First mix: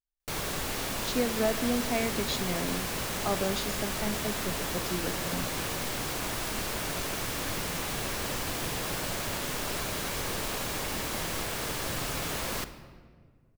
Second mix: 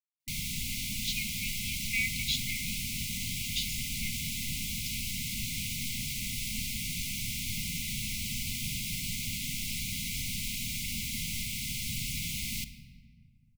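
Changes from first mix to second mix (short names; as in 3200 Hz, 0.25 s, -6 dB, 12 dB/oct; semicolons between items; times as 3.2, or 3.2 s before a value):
speech: add resonant high-pass 2300 Hz, resonance Q 2.6; master: add brick-wall FIR band-stop 260–2000 Hz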